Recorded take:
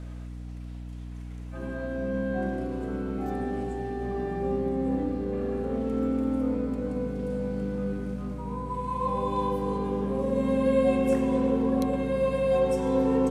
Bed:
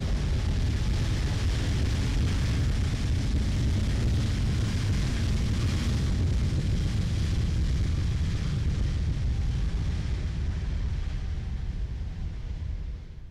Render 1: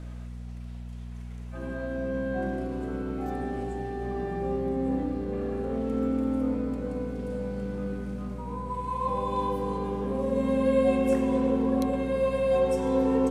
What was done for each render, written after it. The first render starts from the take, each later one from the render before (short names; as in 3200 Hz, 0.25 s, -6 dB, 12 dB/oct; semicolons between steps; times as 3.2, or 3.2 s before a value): de-hum 50 Hz, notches 10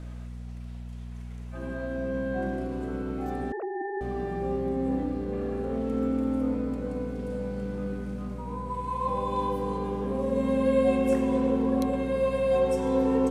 3.52–4.01 sine-wave speech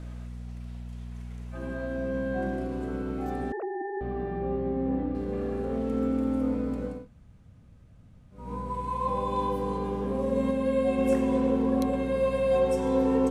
3.75–5.15 air absorption 310 m; 6.96–8.42 room tone, crossfade 0.24 s; 10.51–10.98 gain -3 dB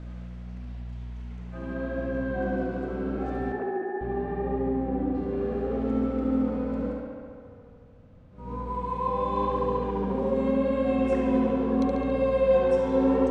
air absorption 110 m; tape echo 71 ms, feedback 87%, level -5 dB, low-pass 5900 Hz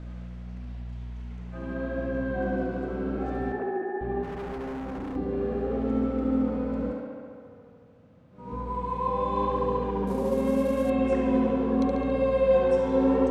4.23–5.16 hard clip -32.5 dBFS; 6.92–8.53 HPF 130 Hz; 10.07–10.9 CVSD 64 kbps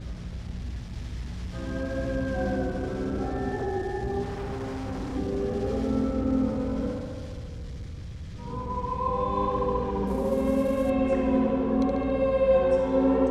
add bed -11.5 dB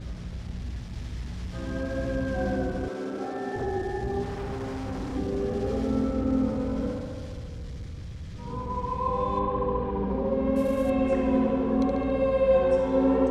2.88–3.56 HPF 280 Hz; 9.39–10.56 air absorption 260 m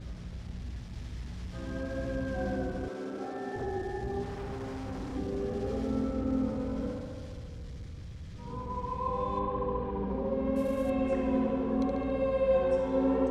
gain -5 dB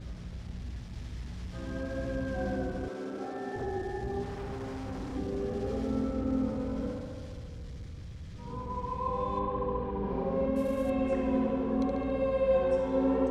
10–10.46 flutter echo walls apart 6.7 m, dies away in 0.81 s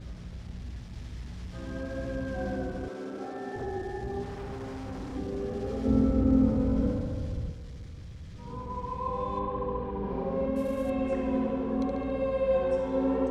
5.85–7.52 low shelf 420 Hz +10 dB